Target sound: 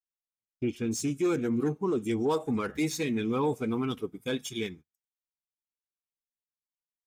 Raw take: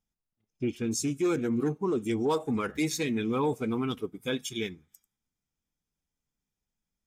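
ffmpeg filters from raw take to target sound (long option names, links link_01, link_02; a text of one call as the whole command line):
ffmpeg -i in.wav -filter_complex "[0:a]agate=range=-29dB:threshold=-46dB:ratio=16:detection=peak,acrossover=split=890[link_01][link_02];[link_02]asoftclip=type=tanh:threshold=-29dB[link_03];[link_01][link_03]amix=inputs=2:normalize=0" out.wav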